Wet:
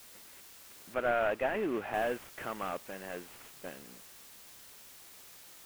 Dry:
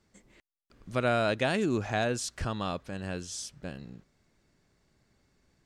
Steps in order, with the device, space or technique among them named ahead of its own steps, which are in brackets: army field radio (band-pass 350–2900 Hz; CVSD coder 16 kbps; white noise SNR 16 dB); 0.94–1.94 s: tone controls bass 0 dB, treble -8 dB

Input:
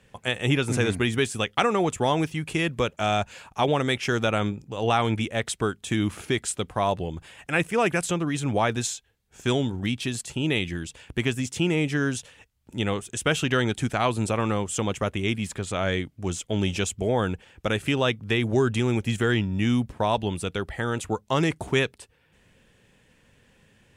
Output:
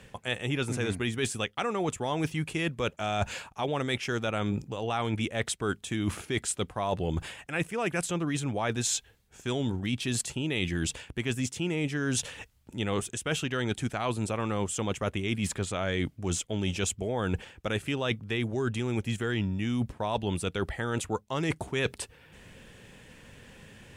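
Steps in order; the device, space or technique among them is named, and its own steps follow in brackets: compression on the reversed sound (reverse; compression 12:1, threshold -35 dBFS, peak gain reduction 19 dB; reverse); trim +8.5 dB

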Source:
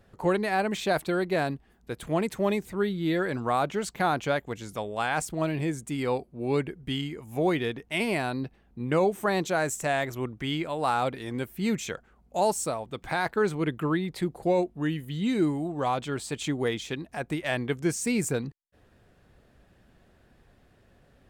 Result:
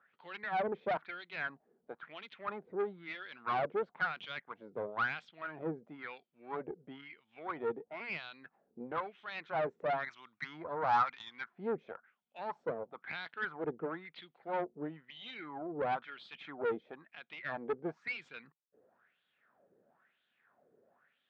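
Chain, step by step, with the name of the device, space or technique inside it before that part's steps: wah-wah guitar rig (wah-wah 1 Hz 430–3400 Hz, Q 4.8; valve stage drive 34 dB, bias 0.55; cabinet simulation 110–3700 Hz, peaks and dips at 160 Hz +6 dB, 230 Hz +5 dB, 1.4 kHz +5 dB, 2.8 kHz -4 dB); 10.04–11.49 s: FFT filter 190 Hz 0 dB, 480 Hz -5 dB, 980 Hz +8 dB, 2.9 kHz -2 dB, 6 kHz +15 dB; trim +4.5 dB

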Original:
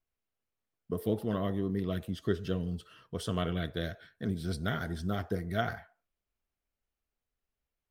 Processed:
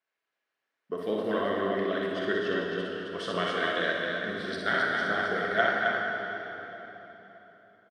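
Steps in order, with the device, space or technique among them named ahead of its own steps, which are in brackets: station announcement (band-pass 430–4200 Hz; peaking EQ 1.7 kHz +8 dB 0.55 oct; loudspeakers at several distances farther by 21 m -4 dB, 91 m -4 dB; reverberation RT60 3.7 s, pre-delay 3 ms, DRR 0 dB); trim +4 dB

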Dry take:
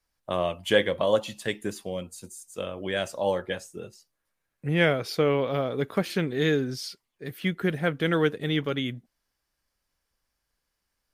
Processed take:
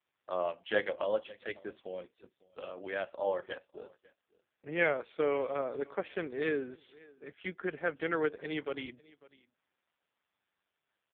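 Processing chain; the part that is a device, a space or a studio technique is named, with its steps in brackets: 1.04–1.98 s: dynamic bell 850 Hz, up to -4 dB, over -36 dBFS, Q 0.96; satellite phone (band-pass 380–3200 Hz; delay 549 ms -23 dB; trim -4.5 dB; AMR-NB 4.75 kbps 8 kHz)

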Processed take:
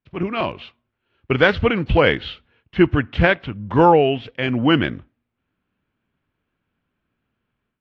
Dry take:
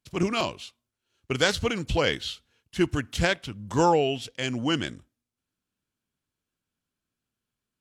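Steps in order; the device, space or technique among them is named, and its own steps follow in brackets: action camera in a waterproof case (low-pass 2.7 kHz 24 dB/octave; level rider gain up to 12.5 dB; AAC 48 kbps 32 kHz)

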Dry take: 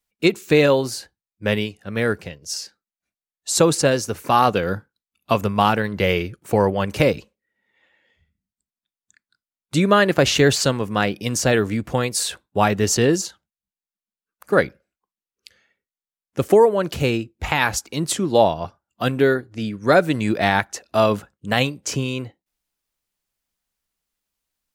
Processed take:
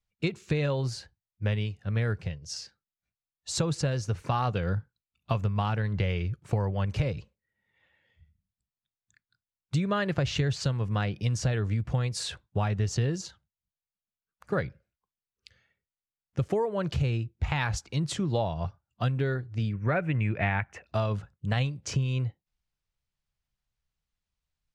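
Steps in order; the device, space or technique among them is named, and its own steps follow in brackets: jukebox (low-pass 5.8 kHz 12 dB/octave; resonant low shelf 180 Hz +11 dB, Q 1.5; compression 5:1, threshold -18 dBFS, peak gain reduction 11 dB); 19.73–20.87 s: resonant high shelf 3.2 kHz -9.5 dB, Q 3; trim -6.5 dB

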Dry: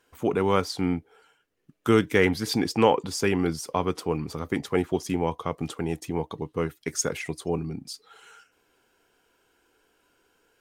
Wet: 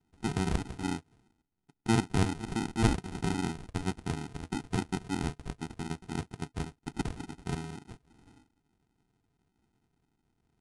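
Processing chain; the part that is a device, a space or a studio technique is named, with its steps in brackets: crushed at another speed (playback speed 2×; sample-and-hold 39×; playback speed 0.5×); trim -7.5 dB

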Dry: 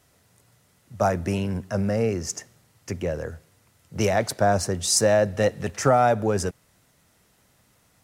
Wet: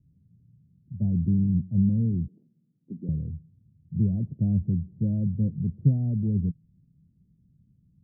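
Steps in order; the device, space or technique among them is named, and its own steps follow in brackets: the neighbour's flat through the wall (low-pass 220 Hz 24 dB/octave; peaking EQ 160 Hz +7 dB 0.5 oct); 2.28–3.09 s: high-pass 220 Hz 24 dB/octave; trim +3 dB

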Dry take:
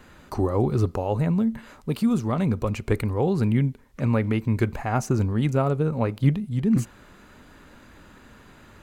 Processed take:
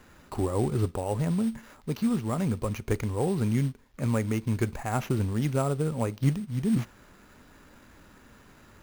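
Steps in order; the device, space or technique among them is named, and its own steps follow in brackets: early companding sampler (sample-rate reducer 8.7 kHz, jitter 0%; companded quantiser 6-bit); trim -4.5 dB

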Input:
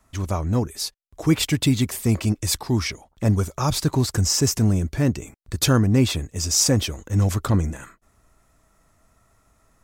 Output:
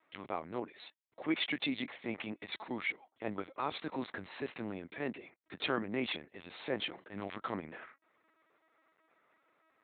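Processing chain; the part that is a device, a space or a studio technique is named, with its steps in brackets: talking toy (LPC vocoder at 8 kHz pitch kept; high-pass 390 Hz 12 dB/octave; peaking EQ 2.1 kHz +6 dB 0.45 oct); trim -9 dB

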